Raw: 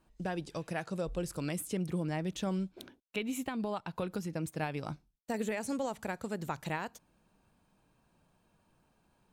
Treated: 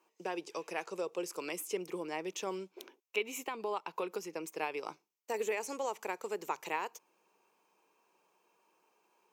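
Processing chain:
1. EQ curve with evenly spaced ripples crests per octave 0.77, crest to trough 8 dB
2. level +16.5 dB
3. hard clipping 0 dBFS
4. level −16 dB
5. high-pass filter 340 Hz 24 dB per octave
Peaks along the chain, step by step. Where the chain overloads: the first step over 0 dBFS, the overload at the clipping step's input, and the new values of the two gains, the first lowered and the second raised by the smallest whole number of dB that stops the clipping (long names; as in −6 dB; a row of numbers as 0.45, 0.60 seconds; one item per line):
−20.0, −3.5, −3.5, −19.5, −19.0 dBFS
no step passes full scale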